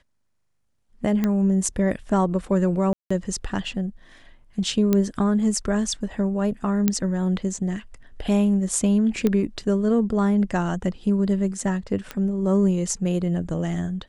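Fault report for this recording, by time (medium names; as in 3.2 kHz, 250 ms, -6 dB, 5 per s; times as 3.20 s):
1.24 s: pop -11 dBFS
2.93–3.10 s: dropout 175 ms
4.93 s: pop -8 dBFS
6.88 s: pop -6 dBFS
9.27 s: pop -10 dBFS
12.11 s: pop -15 dBFS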